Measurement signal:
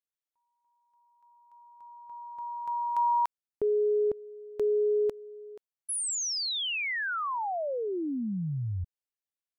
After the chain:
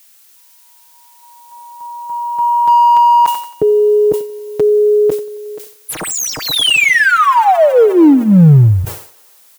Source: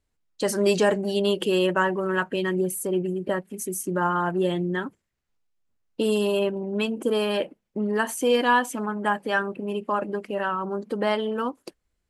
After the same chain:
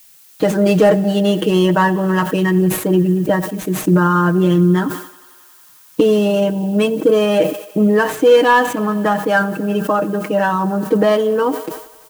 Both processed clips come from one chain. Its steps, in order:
running median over 9 samples
camcorder AGC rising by 5.8 dB per second
high-pass filter 110 Hz 6 dB per octave
low-shelf EQ 420 Hz +9.5 dB
comb filter 6.4 ms, depth 83%
in parallel at −9.5 dB: wave folding −9.5 dBFS
on the sum: background noise blue −48 dBFS
on a send: feedback echo with a high-pass in the loop 90 ms, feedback 84%, high-pass 290 Hz, level −22.5 dB
on the sum: level that may fall only so fast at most 100 dB per second
level +1.5 dB

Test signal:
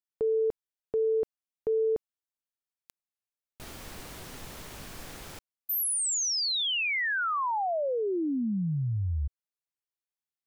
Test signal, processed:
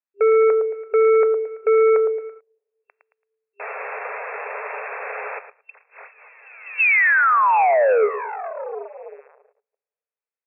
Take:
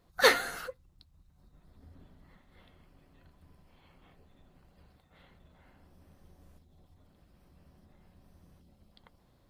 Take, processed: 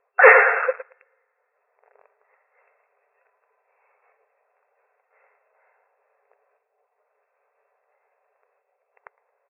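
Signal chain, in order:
coupled-rooms reverb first 0.7 s, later 2.5 s, from −19 dB, DRR 13.5 dB
in parallel at −3.5 dB: hard clipping −19.5 dBFS
on the sum: repeating echo 111 ms, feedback 34%, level −11 dB
leveller curve on the samples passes 3
brick-wall band-pass 400–2,700 Hz
level +3 dB

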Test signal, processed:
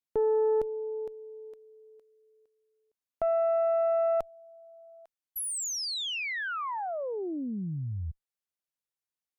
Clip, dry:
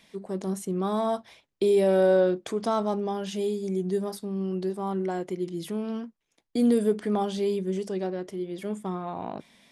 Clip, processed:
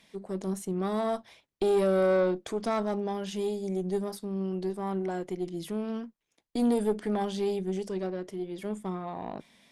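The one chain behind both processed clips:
tube saturation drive 18 dB, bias 0.55

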